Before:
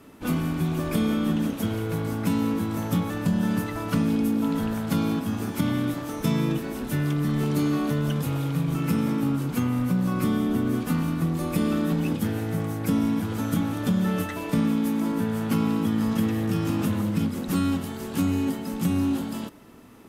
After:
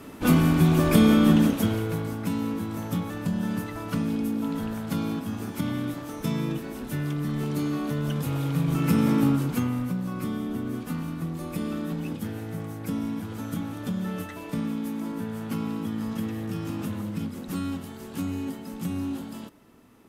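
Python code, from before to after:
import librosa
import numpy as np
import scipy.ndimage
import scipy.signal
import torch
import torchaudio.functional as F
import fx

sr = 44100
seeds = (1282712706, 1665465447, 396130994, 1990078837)

y = fx.gain(x, sr, db=fx.line((1.37, 6.5), (2.18, -4.0), (7.82, -4.0), (9.22, 4.0), (10.03, -6.5)))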